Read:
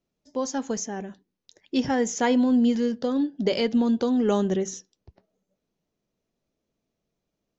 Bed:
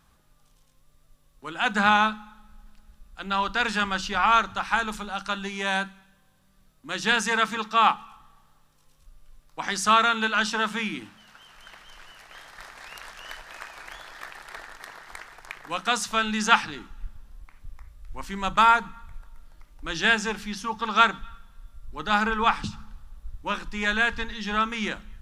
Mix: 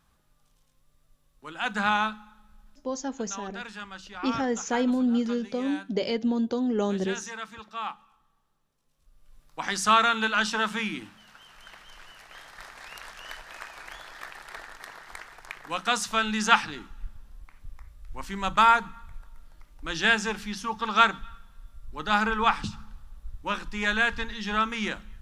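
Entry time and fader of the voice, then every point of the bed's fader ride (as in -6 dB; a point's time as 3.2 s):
2.50 s, -4.0 dB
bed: 2.73 s -5 dB
3.02 s -14.5 dB
8.84 s -14.5 dB
9.42 s -1 dB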